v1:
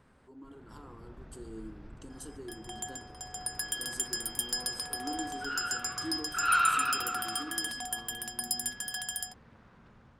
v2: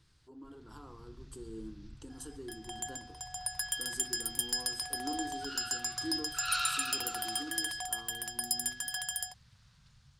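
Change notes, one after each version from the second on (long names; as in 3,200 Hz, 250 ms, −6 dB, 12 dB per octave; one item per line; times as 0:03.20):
first sound: add drawn EQ curve 140 Hz 0 dB, 300 Hz −25 dB, 2,300 Hz −4 dB, 4,400 Hz +12 dB
reverb: off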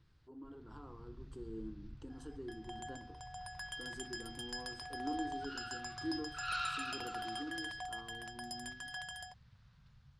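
master: add head-to-tape spacing loss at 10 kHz 22 dB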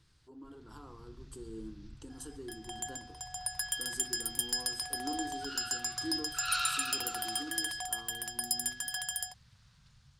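master: remove head-to-tape spacing loss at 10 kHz 22 dB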